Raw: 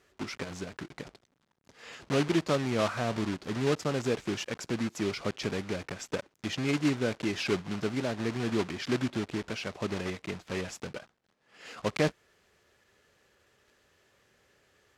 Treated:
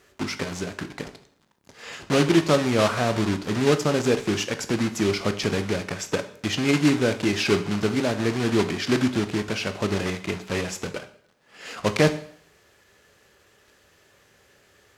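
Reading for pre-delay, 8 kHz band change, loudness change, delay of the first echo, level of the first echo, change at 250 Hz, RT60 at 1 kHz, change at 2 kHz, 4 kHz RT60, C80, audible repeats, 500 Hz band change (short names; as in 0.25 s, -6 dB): 6 ms, +10.0 dB, +8.0 dB, none, none, +8.0 dB, 0.65 s, +8.0 dB, 0.60 s, 16.5 dB, none, +8.0 dB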